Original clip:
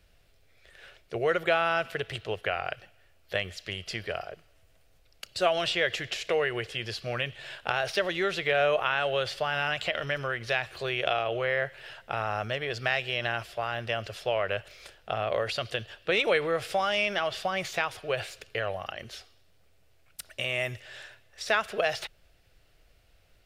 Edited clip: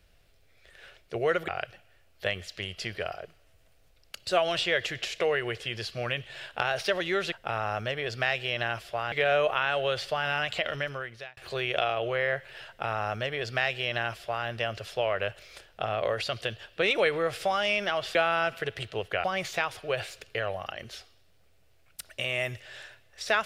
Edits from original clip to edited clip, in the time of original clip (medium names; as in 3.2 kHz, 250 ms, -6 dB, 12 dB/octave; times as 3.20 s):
1.48–2.57 s: move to 17.44 s
10.02–10.66 s: fade out
11.96–13.76 s: copy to 8.41 s